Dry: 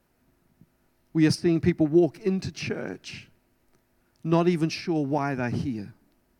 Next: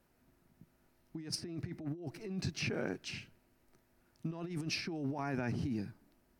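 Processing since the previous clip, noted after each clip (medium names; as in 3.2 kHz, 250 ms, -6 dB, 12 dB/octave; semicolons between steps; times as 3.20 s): compressor with a negative ratio -30 dBFS, ratio -1; trim -9 dB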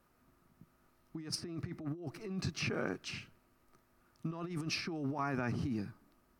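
peaking EQ 1.2 kHz +11 dB 0.35 oct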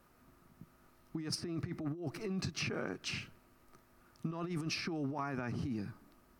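compression 10:1, threshold -39 dBFS, peak gain reduction 9 dB; trim +5 dB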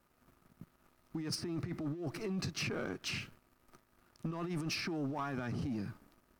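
waveshaping leveller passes 2; trim -5.5 dB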